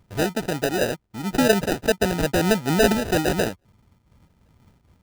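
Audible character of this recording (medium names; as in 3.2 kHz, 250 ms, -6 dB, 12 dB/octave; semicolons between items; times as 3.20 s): aliases and images of a low sample rate 1.1 kHz, jitter 0%; random flutter of the level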